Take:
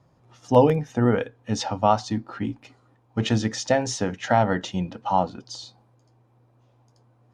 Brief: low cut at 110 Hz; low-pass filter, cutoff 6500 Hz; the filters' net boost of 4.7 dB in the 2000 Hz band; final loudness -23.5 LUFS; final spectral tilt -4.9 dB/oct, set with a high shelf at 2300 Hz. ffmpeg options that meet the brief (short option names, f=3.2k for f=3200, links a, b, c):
-af "highpass=110,lowpass=6.5k,equalizer=f=2k:t=o:g=7.5,highshelf=f=2.3k:g=-3.5"